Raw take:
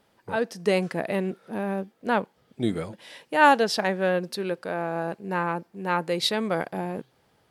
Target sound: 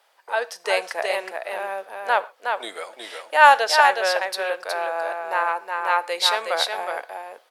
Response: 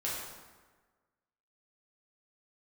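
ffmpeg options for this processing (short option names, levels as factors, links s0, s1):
-filter_complex "[0:a]highpass=f=610:w=0.5412,highpass=f=610:w=1.3066,aecho=1:1:367:0.596,asplit=2[s0][s1];[1:a]atrim=start_sample=2205,afade=t=out:st=0.16:d=0.01,atrim=end_sample=7497,adelay=21[s2];[s1][s2]afir=irnorm=-1:irlink=0,volume=0.0891[s3];[s0][s3]amix=inputs=2:normalize=0,volume=1.88"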